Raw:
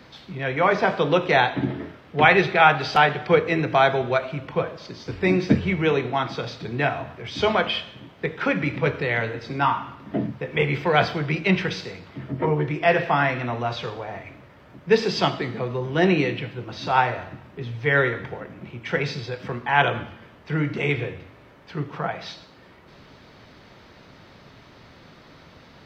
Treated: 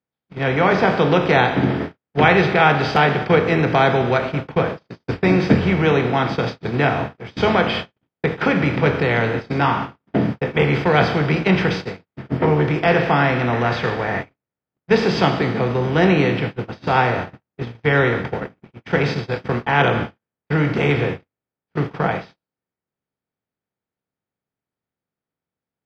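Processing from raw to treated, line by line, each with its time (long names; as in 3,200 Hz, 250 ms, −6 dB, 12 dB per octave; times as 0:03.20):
0:13.53–0:14.21: parametric band 1,800 Hz +13 dB 0.48 octaves
whole clip: compressor on every frequency bin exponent 0.6; noise gate −22 dBFS, range −58 dB; low-shelf EQ 310 Hz +6.5 dB; level −2.5 dB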